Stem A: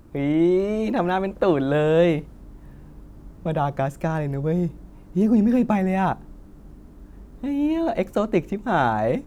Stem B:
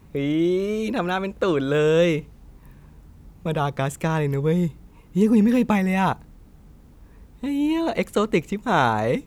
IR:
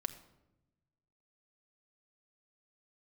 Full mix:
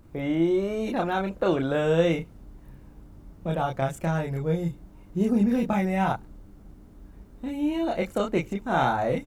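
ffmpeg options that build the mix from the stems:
-filter_complex "[0:a]volume=-5dB[link_01];[1:a]aecho=1:1:1.4:0.53,adelay=30,volume=-9.5dB[link_02];[link_01][link_02]amix=inputs=2:normalize=0"

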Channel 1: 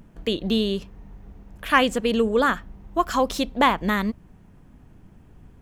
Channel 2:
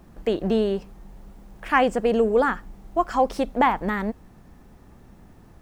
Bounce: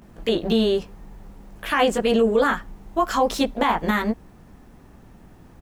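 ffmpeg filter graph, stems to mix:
ffmpeg -i stem1.wav -i stem2.wav -filter_complex "[0:a]highpass=frequency=240:poles=1,volume=1dB[link_01];[1:a]adelay=18,volume=1dB[link_02];[link_01][link_02]amix=inputs=2:normalize=0,alimiter=limit=-10dB:level=0:latency=1:release=46" out.wav

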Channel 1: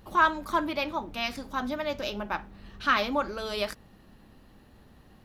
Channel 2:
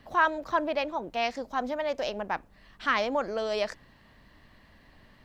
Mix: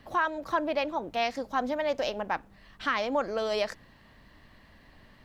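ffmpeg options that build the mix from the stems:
ffmpeg -i stem1.wav -i stem2.wav -filter_complex "[0:a]acompressor=threshold=-31dB:ratio=6,highpass=57,volume=-9.5dB[link_01];[1:a]volume=1dB,asplit=2[link_02][link_03];[link_03]apad=whole_len=231493[link_04];[link_01][link_04]sidechaingate=range=-33dB:threshold=-50dB:ratio=16:detection=peak[link_05];[link_05][link_02]amix=inputs=2:normalize=0,alimiter=limit=-17dB:level=0:latency=1:release=296" out.wav

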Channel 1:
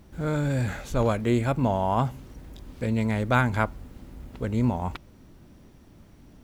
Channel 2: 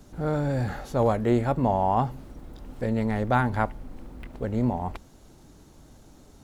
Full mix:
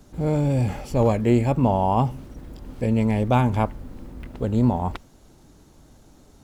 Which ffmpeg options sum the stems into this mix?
ffmpeg -i stem1.wav -i stem2.wav -filter_complex "[0:a]volume=-1.5dB[link_01];[1:a]volume=0dB,asplit=2[link_02][link_03];[link_03]apad=whole_len=283797[link_04];[link_01][link_04]sidechaingate=range=-33dB:threshold=-42dB:ratio=16:detection=peak[link_05];[link_05][link_02]amix=inputs=2:normalize=0" out.wav

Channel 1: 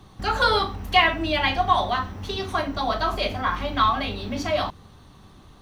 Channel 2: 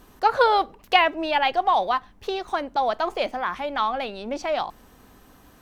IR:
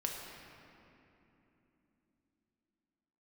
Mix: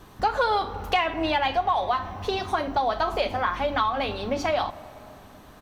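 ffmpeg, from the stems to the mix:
-filter_complex "[0:a]volume=-3.5dB[link_01];[1:a]asplit=2[link_02][link_03];[link_03]highpass=frequency=720:poles=1,volume=7dB,asoftclip=type=tanh:threshold=-3dB[link_04];[link_02][link_04]amix=inputs=2:normalize=0,lowpass=frequency=1200:poles=1,volume=-6dB,highshelf=frequency=4400:gain=10.5,adelay=1.1,volume=1.5dB,asplit=2[link_05][link_06];[link_06]volume=-15.5dB[link_07];[2:a]atrim=start_sample=2205[link_08];[link_07][link_08]afir=irnorm=-1:irlink=0[link_09];[link_01][link_05][link_09]amix=inputs=3:normalize=0,acompressor=threshold=-21dB:ratio=4"

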